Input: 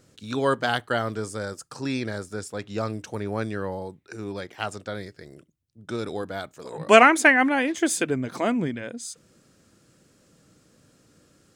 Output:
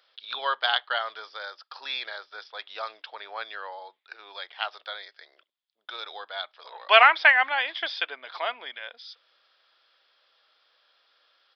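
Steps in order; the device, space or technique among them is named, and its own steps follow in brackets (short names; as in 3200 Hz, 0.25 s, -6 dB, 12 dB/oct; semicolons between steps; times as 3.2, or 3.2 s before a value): musical greeting card (downsampling 11025 Hz; HPF 740 Hz 24 dB/oct; bell 3400 Hz +11 dB 0.26 oct)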